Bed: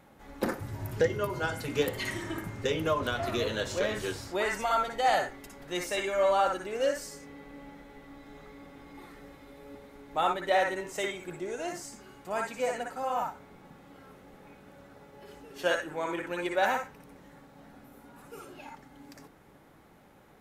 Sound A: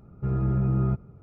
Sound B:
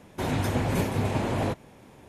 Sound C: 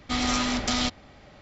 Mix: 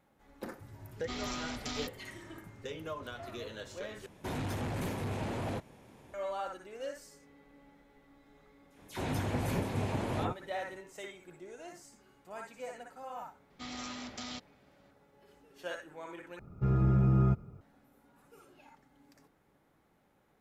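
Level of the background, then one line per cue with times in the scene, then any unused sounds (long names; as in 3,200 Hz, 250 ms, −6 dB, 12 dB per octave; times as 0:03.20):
bed −12.5 dB
0:00.98: mix in C −13.5 dB
0:04.06: overwrite with B −5.5 dB + soft clipping −26 dBFS
0:08.70: mix in B −7 dB + all-pass dispersion lows, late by 90 ms, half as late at 2,100 Hz
0:13.50: mix in C −16.5 dB + high-pass filter 85 Hz
0:16.39: overwrite with A −2 dB + high-shelf EQ 2,200 Hz +9.5 dB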